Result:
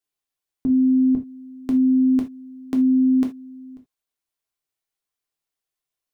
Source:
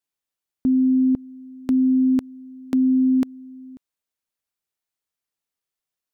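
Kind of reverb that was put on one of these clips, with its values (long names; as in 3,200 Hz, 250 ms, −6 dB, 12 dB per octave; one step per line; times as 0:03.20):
reverb whose tail is shaped and stops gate 100 ms falling, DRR 1.5 dB
level −2 dB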